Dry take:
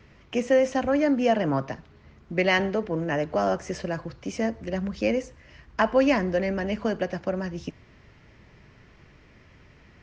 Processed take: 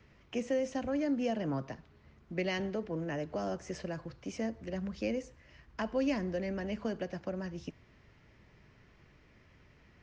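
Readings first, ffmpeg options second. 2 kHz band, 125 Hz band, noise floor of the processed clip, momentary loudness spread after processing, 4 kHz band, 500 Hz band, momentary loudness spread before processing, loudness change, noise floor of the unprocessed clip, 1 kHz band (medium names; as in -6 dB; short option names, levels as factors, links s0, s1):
-13.5 dB, -8.0 dB, -63 dBFS, 10 LU, -10.5 dB, -11.5 dB, 12 LU, -10.5 dB, -55 dBFS, -14.0 dB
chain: -filter_complex "[0:a]acrossover=split=470|3000[s0][s1][s2];[s1]acompressor=threshold=0.02:ratio=2.5[s3];[s0][s3][s2]amix=inputs=3:normalize=0,volume=0.398"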